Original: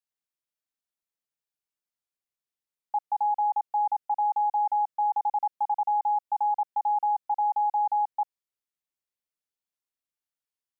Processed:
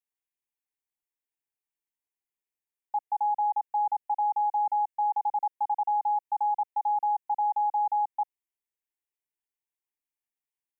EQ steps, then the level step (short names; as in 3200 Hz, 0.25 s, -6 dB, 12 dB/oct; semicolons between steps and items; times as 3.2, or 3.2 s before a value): fixed phaser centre 870 Hz, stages 8; -1.0 dB